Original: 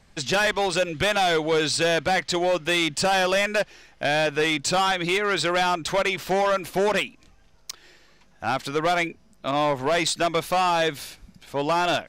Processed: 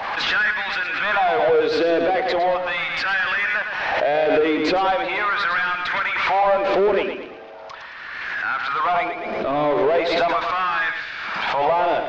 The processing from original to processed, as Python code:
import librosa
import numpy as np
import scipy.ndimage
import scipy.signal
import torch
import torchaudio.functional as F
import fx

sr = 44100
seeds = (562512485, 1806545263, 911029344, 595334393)

y = fx.filter_lfo_highpass(x, sr, shape='sine', hz=0.39, low_hz=370.0, high_hz=1700.0, q=3.1)
y = fx.power_curve(y, sr, exponent=0.5)
y = scipy.ndimage.gaussian_filter1d(y, 2.7, mode='constant')
y = fx.echo_feedback(y, sr, ms=111, feedback_pct=40, wet_db=-7)
y = fx.pre_swell(y, sr, db_per_s=27.0)
y = y * librosa.db_to_amplitude(-6.5)